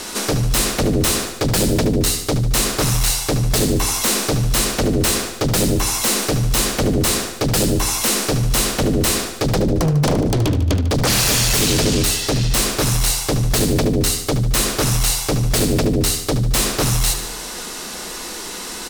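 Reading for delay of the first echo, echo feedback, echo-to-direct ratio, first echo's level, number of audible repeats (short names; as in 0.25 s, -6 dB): 74 ms, 57%, -9.0 dB, -10.5 dB, 6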